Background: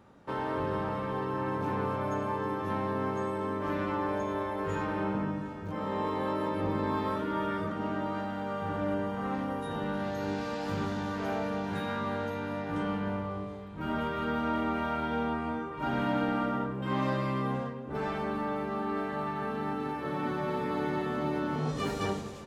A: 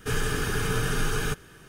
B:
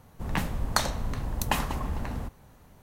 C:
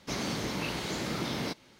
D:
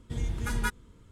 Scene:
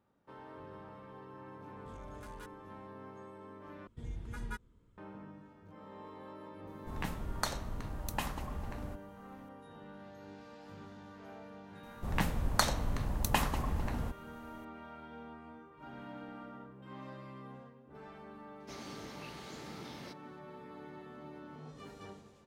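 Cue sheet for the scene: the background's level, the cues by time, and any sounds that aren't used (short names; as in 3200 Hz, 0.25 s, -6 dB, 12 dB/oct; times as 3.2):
background -18 dB
1.76 add D -15 dB + soft clip -32.5 dBFS
3.87 replace with D -11 dB + high shelf 2800 Hz -8.5 dB
6.67 add B -9.5 dB
11.83 add B -3 dB
18.6 add C -14.5 dB
not used: A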